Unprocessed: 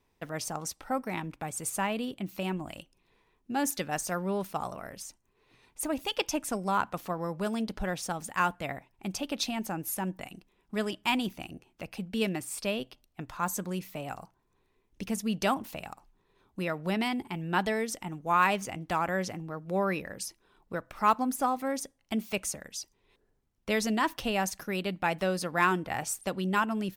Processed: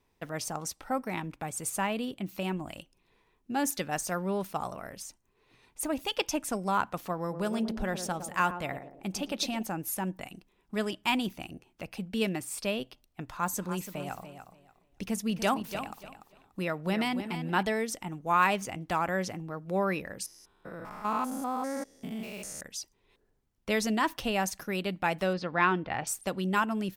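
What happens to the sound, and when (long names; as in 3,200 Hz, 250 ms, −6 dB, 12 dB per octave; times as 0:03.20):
0:07.20–0:09.63: feedback echo with a band-pass in the loop 111 ms, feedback 57%, band-pass 350 Hz, level −6.5 dB
0:13.24–0:17.63: repeating echo 291 ms, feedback 21%, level −10 dB
0:20.26–0:22.61: spectrum averaged block by block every 200 ms
0:25.33–0:26.07: low-pass filter 4,400 Hz 24 dB per octave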